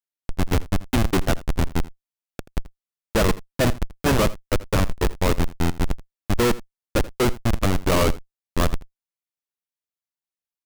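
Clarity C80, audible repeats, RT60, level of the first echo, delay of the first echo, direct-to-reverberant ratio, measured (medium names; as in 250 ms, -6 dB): no reverb, 1, no reverb, -19.0 dB, 82 ms, no reverb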